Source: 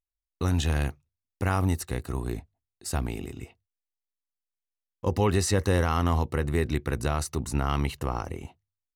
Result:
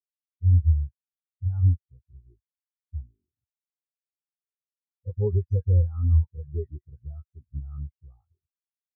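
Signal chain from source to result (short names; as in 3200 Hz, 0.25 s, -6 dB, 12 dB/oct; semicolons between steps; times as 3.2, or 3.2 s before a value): dispersion highs, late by 78 ms, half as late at 1300 Hz; spectral expander 4:1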